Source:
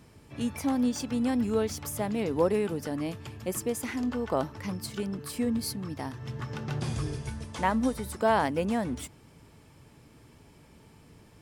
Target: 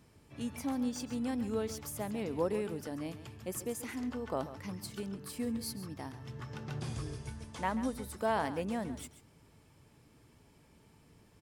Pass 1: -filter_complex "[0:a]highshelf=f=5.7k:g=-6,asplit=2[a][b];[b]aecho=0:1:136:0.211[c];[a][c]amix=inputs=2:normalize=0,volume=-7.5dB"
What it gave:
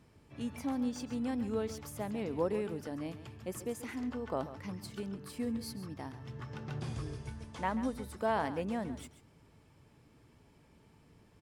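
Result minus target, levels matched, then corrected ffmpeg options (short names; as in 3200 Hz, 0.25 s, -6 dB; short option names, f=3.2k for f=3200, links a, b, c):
8000 Hz band -5.0 dB
-filter_complex "[0:a]highshelf=f=5.7k:g=2,asplit=2[a][b];[b]aecho=0:1:136:0.211[c];[a][c]amix=inputs=2:normalize=0,volume=-7.5dB"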